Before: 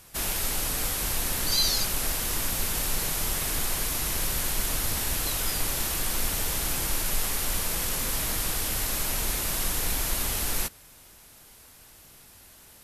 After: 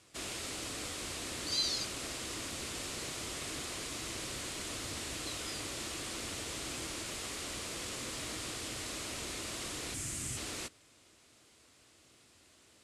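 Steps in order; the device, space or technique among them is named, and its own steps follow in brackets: 9.94–10.37 graphic EQ 125/500/1000/4000/8000 Hz +11/-8/-6/-8/+8 dB; car door speaker (speaker cabinet 99–8300 Hz, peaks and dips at 170 Hz -8 dB, 320 Hz +5 dB, 860 Hz -7 dB, 1600 Hz -4 dB, 5800 Hz -3 dB); gain -7 dB

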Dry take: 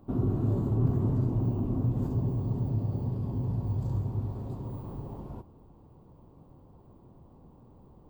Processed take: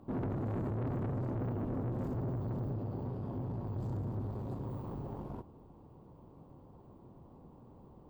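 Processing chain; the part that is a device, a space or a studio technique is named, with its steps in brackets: 2.73–3.76 tone controls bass -5 dB, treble -5 dB; tube preamp driven hard (tube stage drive 34 dB, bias 0.5; low shelf 110 Hz -6 dB; high shelf 4300 Hz -5.5 dB); gain +3 dB

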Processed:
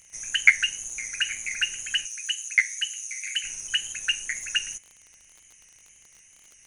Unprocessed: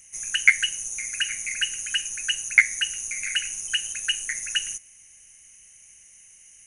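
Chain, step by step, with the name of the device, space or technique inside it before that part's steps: lo-fi chain (LPF 6800 Hz 12 dB/oct; wow and flutter; crackle 30/s -37 dBFS); 2.05–3.44 Bessel high-pass 2600 Hz, order 8

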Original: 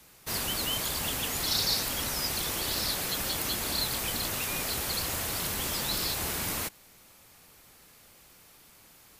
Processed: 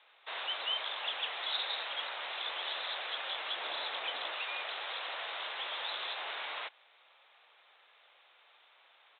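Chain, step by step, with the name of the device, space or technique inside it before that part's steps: musical greeting card (downsampling 8000 Hz; HPF 590 Hz 24 dB/oct; bell 3800 Hz +5.5 dB 0.35 oct); 3.56–4.33 low shelf 390 Hz +9 dB; gain -2 dB

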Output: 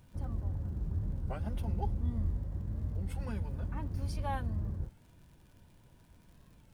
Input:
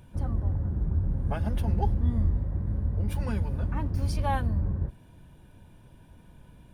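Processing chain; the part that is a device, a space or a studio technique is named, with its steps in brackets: warped LP (record warp 33 1/3 rpm, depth 160 cents; crackle 77/s -46 dBFS; pink noise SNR 38 dB); 1.5–2.18 notch 1700 Hz, Q 8.8; gain -8 dB

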